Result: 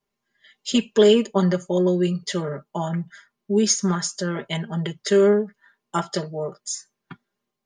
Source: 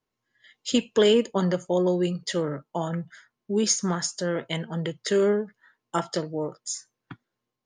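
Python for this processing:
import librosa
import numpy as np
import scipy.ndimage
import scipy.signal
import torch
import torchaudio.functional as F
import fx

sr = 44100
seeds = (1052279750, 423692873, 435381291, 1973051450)

y = x + 0.88 * np.pad(x, (int(5.0 * sr / 1000.0), 0))[:len(x)]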